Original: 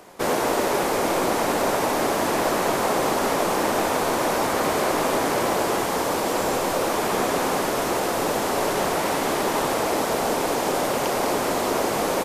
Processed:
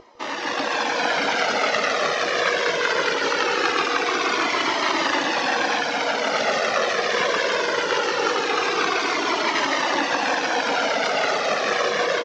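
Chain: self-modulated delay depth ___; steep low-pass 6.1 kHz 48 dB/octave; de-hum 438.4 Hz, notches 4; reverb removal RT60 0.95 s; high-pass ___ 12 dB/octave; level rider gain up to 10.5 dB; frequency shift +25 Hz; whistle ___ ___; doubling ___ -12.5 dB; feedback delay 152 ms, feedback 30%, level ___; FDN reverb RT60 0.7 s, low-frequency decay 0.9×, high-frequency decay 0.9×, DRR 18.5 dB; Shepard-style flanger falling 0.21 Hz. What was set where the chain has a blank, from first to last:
0.74 ms, 230 Hz, 480 Hz, -28 dBFS, 18 ms, -8 dB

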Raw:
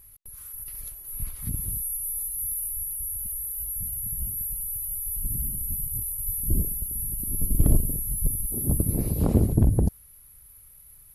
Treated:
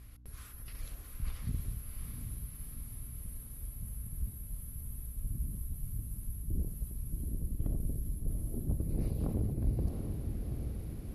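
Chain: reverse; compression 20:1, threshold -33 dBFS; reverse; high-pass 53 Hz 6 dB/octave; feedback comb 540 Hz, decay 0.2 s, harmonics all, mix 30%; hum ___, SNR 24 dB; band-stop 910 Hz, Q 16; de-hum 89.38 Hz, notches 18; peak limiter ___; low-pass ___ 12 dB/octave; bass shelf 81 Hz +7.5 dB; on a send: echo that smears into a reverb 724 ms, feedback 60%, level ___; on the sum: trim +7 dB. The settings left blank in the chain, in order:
60 Hz, -32.5 dBFS, 5 kHz, -5 dB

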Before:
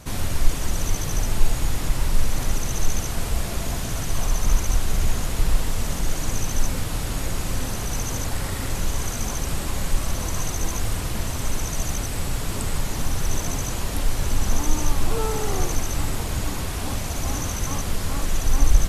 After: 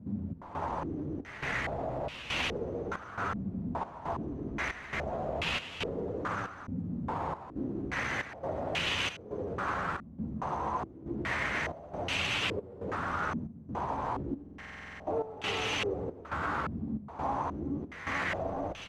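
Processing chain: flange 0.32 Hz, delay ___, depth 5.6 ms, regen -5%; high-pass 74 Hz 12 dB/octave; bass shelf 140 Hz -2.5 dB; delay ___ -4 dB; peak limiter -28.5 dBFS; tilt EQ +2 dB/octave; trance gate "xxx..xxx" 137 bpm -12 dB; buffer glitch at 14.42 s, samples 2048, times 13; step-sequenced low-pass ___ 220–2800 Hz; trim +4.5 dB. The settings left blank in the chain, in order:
9.7 ms, 358 ms, 2.4 Hz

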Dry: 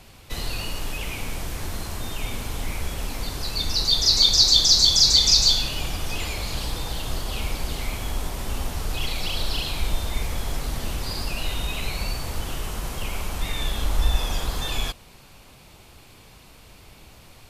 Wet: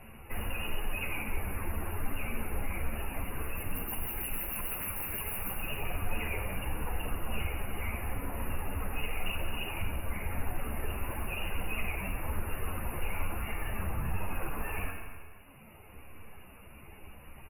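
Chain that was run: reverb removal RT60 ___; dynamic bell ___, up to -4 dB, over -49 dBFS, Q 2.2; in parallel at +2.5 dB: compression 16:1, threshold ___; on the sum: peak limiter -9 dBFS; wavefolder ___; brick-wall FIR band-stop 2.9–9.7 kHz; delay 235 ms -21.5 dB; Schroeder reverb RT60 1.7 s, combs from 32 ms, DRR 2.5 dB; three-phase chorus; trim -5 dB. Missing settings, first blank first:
1.7 s, 150 Hz, -29 dBFS, -20 dBFS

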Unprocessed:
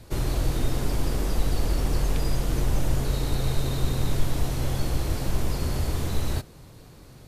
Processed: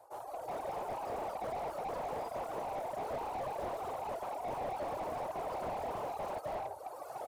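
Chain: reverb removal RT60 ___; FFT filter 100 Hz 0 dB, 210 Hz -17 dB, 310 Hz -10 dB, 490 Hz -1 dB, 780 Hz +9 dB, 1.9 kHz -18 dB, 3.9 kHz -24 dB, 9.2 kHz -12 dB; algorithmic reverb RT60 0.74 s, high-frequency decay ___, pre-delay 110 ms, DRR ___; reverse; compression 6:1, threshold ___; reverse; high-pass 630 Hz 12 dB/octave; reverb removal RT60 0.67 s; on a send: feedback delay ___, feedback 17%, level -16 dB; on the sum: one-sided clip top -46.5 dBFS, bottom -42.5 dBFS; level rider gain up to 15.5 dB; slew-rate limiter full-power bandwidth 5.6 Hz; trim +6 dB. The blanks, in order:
1.9 s, 0.45×, 6 dB, -36 dBFS, 354 ms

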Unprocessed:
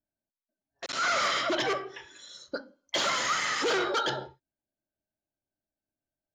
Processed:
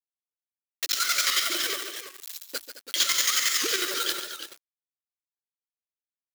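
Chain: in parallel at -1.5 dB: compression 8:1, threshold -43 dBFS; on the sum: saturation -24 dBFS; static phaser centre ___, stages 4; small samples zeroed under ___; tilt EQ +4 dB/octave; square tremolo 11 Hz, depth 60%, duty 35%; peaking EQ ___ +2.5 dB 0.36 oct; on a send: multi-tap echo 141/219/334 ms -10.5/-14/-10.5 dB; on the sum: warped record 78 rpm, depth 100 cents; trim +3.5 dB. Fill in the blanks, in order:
330 Hz, -37 dBFS, 320 Hz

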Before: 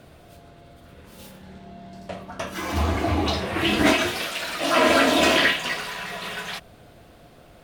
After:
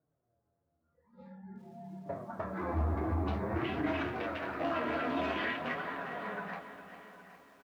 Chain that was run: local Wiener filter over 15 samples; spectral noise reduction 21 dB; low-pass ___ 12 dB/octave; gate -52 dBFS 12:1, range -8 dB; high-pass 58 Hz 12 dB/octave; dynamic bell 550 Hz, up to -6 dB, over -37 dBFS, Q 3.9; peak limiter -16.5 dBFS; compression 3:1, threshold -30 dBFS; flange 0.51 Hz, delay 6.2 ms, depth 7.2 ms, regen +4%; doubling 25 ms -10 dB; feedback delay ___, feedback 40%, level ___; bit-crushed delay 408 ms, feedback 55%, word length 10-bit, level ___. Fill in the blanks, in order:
2 kHz, 769 ms, -18.5 dB, -11.5 dB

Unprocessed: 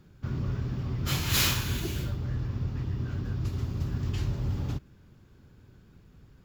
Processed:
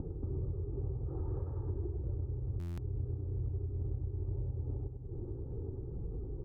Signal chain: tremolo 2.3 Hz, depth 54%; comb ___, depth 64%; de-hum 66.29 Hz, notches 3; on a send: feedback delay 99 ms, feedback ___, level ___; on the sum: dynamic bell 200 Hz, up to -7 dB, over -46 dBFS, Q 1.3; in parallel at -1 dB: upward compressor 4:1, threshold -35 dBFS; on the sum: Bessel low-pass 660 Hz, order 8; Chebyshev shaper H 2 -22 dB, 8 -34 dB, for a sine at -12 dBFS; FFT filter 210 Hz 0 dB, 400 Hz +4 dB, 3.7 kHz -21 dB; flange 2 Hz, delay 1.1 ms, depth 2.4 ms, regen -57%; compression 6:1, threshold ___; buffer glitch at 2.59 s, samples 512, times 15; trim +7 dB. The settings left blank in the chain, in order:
2.4 ms, 29%, -3.5 dB, -42 dBFS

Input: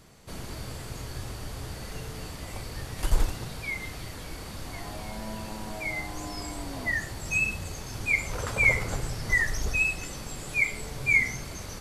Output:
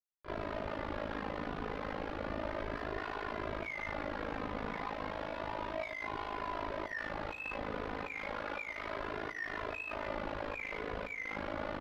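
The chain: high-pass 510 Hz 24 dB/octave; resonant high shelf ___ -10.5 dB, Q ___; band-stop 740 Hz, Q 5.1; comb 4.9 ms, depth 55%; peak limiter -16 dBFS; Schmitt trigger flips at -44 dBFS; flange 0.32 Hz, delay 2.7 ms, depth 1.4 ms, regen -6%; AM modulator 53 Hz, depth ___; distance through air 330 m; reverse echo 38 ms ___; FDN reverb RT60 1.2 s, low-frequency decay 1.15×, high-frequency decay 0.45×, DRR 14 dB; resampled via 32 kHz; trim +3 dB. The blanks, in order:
2.7 kHz, 1.5, 85%, -10 dB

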